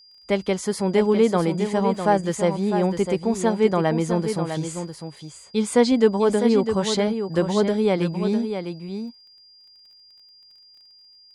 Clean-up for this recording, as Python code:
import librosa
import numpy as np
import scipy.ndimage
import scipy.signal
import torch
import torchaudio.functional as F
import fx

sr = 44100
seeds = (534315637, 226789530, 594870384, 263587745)

y = fx.fix_declick_ar(x, sr, threshold=6.5)
y = fx.notch(y, sr, hz=4800.0, q=30.0)
y = fx.fix_echo_inverse(y, sr, delay_ms=653, level_db=-8.0)